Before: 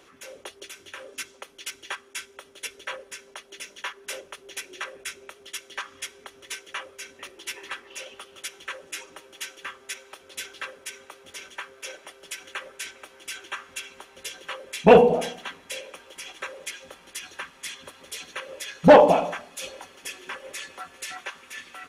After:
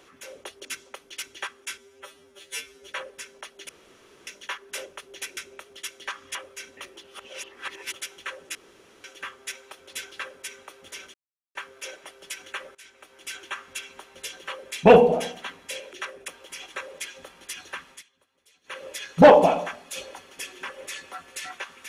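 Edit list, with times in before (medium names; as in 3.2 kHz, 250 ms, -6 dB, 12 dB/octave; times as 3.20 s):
0.65–1.13 s: delete
2.26–2.81 s: stretch 2×
3.62 s: insert room tone 0.58 s
4.72–5.07 s: move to 15.94 s
6.05–6.77 s: delete
7.46–8.35 s: reverse
8.97–9.46 s: room tone
11.56 s: insert silence 0.41 s
12.76–13.35 s: fade in, from -19 dB
17.57–18.42 s: dip -23.5 dB, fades 0.12 s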